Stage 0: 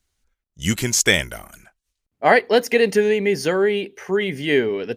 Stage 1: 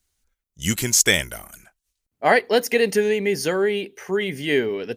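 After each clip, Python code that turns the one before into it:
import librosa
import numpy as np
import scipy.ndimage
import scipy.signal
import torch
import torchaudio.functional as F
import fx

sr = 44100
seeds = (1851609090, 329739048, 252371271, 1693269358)

y = fx.high_shelf(x, sr, hz=6700.0, db=9.0)
y = y * librosa.db_to_amplitude(-2.5)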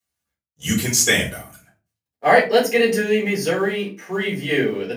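y = fx.law_mismatch(x, sr, coded='A')
y = scipy.signal.sosfilt(scipy.signal.butter(4, 83.0, 'highpass', fs=sr, output='sos'), y)
y = fx.room_shoebox(y, sr, seeds[0], volume_m3=140.0, walls='furnished', distance_m=4.0)
y = y * librosa.db_to_amplitude(-6.5)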